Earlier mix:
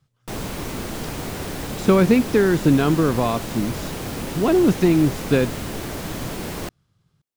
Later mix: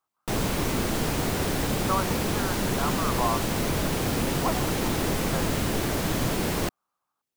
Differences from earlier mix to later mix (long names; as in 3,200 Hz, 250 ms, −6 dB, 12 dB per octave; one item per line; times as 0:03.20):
speech: add flat-topped band-pass 990 Hz, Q 1.8
background +3.0 dB